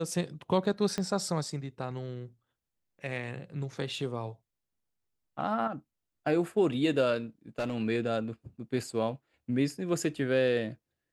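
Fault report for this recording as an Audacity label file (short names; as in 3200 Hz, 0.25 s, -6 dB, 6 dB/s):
0.980000	0.980000	pop -18 dBFS
7.580000	7.750000	clipped -27 dBFS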